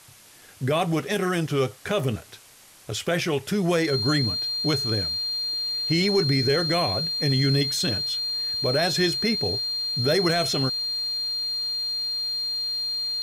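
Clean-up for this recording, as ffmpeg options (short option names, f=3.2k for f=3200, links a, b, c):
-af "bandreject=f=4.2k:w=30,afwtdn=0.0035"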